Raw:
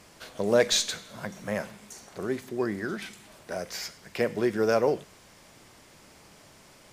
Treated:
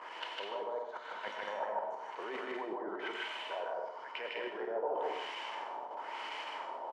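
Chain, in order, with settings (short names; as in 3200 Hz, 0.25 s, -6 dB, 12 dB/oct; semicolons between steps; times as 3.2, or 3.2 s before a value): HPF 370 Hz 24 dB/oct; high shelf 4100 Hz +9 dB; level quantiser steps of 13 dB; limiter -26 dBFS, peak gain reduction 10.5 dB; reverse; compressor 12:1, threshold -45 dBFS, peak gain reduction 15.5 dB; reverse; soft clip -33 dBFS, distortion -31 dB; small resonant body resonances 930/3000 Hz, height 14 dB, ringing for 25 ms; LFO low-pass sine 1 Hz 670–2600 Hz; loudspeakers at several distances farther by 53 m -1 dB, 70 m -5 dB; on a send at -6.5 dB: reverb RT60 0.40 s, pre-delay 82 ms; on the sum: gain +4 dB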